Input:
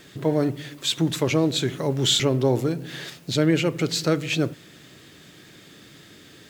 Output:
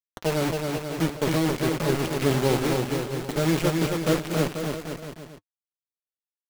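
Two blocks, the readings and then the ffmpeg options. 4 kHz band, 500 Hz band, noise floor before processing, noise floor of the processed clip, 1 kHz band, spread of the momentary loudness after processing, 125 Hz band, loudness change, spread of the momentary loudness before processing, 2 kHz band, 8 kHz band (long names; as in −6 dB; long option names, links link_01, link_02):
−8.0 dB, −0.5 dB, −49 dBFS, below −85 dBFS, +3.5 dB, 8 LU, −1.0 dB, −2.0 dB, 8 LU, 0.0 dB, −4.0 dB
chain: -filter_complex "[0:a]aemphasis=mode=reproduction:type=75fm,acrossover=split=2600[link_01][link_02];[link_02]acompressor=threshold=-48dB:ratio=4:attack=1:release=60[link_03];[link_01][link_03]amix=inputs=2:normalize=0,acrusher=bits=3:mix=0:aa=0.000001,flanger=delay=4:depth=1.8:regen=-49:speed=0.95:shape=triangular,aecho=1:1:270|486|658.8|797|907.6:0.631|0.398|0.251|0.158|0.1"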